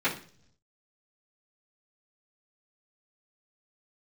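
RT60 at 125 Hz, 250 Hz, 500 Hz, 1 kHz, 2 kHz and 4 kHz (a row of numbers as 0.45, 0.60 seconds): 1.1, 0.80, 0.60, 0.40, 0.45, 0.55 seconds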